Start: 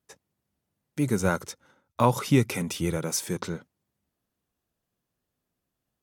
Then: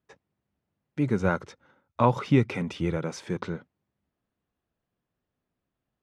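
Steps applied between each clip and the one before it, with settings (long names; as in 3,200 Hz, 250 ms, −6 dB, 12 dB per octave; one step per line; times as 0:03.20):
low-pass filter 2,900 Hz 12 dB per octave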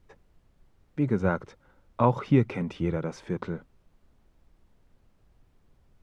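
high-shelf EQ 2,400 Hz −9.5 dB
background noise brown −60 dBFS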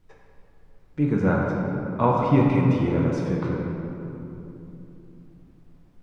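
rectangular room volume 130 cubic metres, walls hard, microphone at 0.59 metres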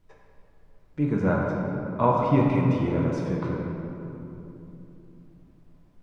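hollow resonant body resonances 620/1,000 Hz, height 8 dB, ringing for 90 ms
level −2.5 dB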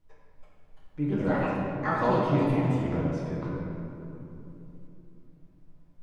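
delay with pitch and tempo change per echo 357 ms, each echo +5 semitones, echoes 2
rectangular room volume 110 cubic metres, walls mixed, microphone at 0.55 metres
level −7 dB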